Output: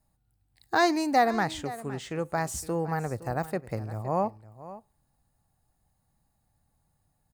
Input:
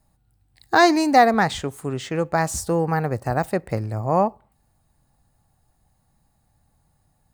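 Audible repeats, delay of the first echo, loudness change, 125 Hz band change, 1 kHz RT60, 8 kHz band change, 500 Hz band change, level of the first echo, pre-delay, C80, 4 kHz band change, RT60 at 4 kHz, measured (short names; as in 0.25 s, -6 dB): 1, 0.514 s, -8.0 dB, -8.0 dB, none, -7.0 dB, -8.0 dB, -16.0 dB, none, none, -7.5 dB, none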